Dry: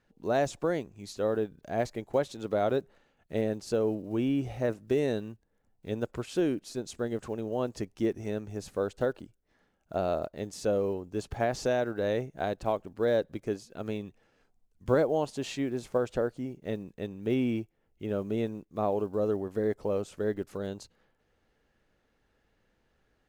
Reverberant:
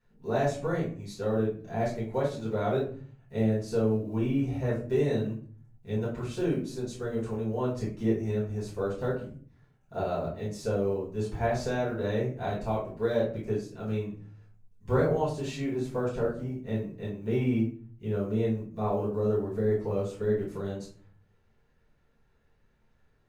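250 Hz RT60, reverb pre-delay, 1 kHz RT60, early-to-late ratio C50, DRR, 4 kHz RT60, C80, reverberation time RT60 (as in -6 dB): 0.80 s, 5 ms, 0.40 s, 6.0 dB, -9.5 dB, 0.30 s, 11.0 dB, 0.45 s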